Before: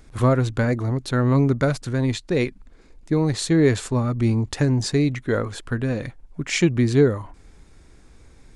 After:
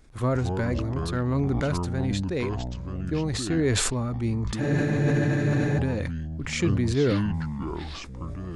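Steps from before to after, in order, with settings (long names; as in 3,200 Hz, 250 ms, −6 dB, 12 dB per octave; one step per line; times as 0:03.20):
delay with pitch and tempo change per echo 125 ms, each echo −6 semitones, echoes 2, each echo −6 dB
frozen spectrum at 0:04.62, 1.16 s
level that may fall only so fast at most 23 dB per second
level −7.5 dB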